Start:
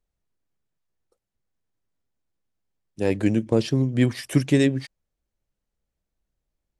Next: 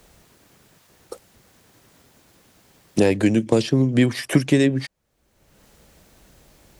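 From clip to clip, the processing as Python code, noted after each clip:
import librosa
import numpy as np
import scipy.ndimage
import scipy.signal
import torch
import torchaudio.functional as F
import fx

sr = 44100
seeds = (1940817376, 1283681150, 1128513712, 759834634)

y = fx.highpass(x, sr, hz=130.0, slope=6)
y = fx.band_squash(y, sr, depth_pct=100)
y = y * librosa.db_to_amplitude(4.0)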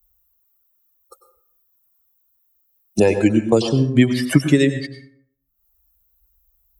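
y = fx.bin_expand(x, sr, power=2.0)
y = fx.rev_plate(y, sr, seeds[0], rt60_s=0.62, hf_ratio=0.5, predelay_ms=85, drr_db=8.5)
y = y * librosa.db_to_amplitude(5.5)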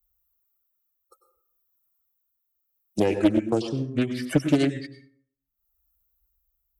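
y = fx.tremolo_shape(x, sr, shape='triangle', hz=0.71, depth_pct=45)
y = fx.small_body(y, sr, hz=(320.0, 1300.0, 2300.0), ring_ms=45, db=7)
y = fx.doppler_dist(y, sr, depth_ms=0.54)
y = y * librosa.db_to_amplitude(-8.0)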